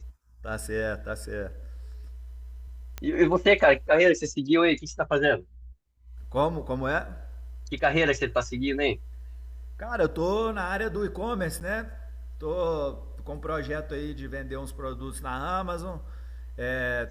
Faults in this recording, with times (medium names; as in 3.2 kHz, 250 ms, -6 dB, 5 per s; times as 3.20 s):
2.98 s: pop -19 dBFS
11.60–11.61 s: dropout 8.6 ms